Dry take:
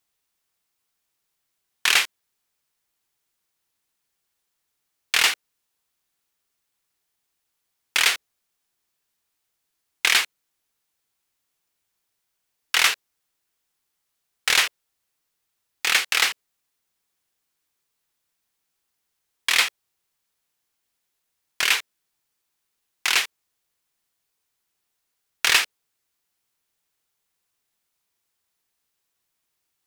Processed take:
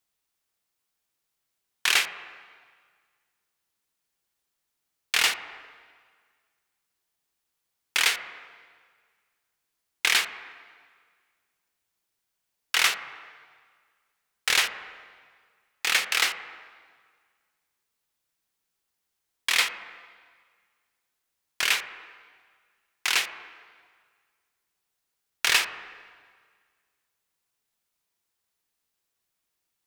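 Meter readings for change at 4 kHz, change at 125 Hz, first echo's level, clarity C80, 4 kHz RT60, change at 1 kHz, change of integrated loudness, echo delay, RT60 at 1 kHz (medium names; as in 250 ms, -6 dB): -3.5 dB, no reading, no echo, 12.0 dB, 1.6 s, -3.0 dB, -3.5 dB, no echo, 1.7 s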